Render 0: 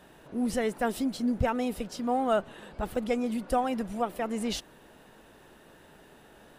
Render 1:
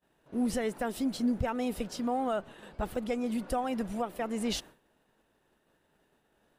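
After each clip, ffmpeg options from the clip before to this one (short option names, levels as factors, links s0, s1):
-af "alimiter=limit=0.0891:level=0:latency=1:release=299,agate=range=0.0224:threshold=0.00708:ratio=3:detection=peak"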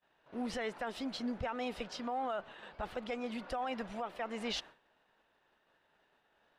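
-filter_complex "[0:a]acrossover=split=590 5200:gain=0.251 1 0.0794[s0][s1][s2];[s0][s1][s2]amix=inputs=3:normalize=0,alimiter=level_in=2.11:limit=0.0631:level=0:latency=1:release=15,volume=0.473,volume=1.26"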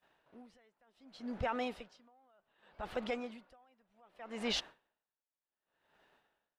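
-af "aeval=exprs='val(0)*pow(10,-36*(0.5-0.5*cos(2*PI*0.66*n/s))/20)':c=same,volume=1.41"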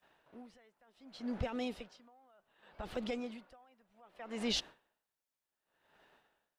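-filter_complex "[0:a]acrossover=split=460|3000[s0][s1][s2];[s1]acompressor=threshold=0.00355:ratio=6[s3];[s0][s3][s2]amix=inputs=3:normalize=0,volume=1.41"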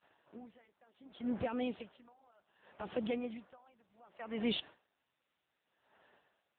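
-af "volume=1.41" -ar 8000 -c:a libopencore_amrnb -b:a 6700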